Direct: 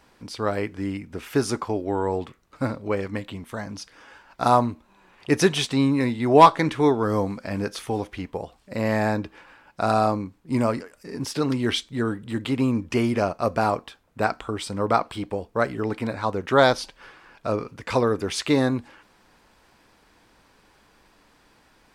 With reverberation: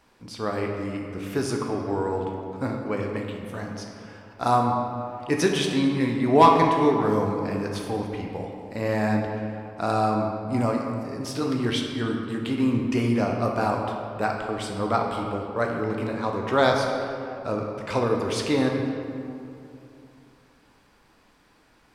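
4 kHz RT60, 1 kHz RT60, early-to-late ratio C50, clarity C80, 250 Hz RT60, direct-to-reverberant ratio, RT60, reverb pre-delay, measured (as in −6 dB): 1.4 s, 2.5 s, 2.5 dB, 4.0 dB, 3.0 s, 1.0 dB, 2.7 s, 12 ms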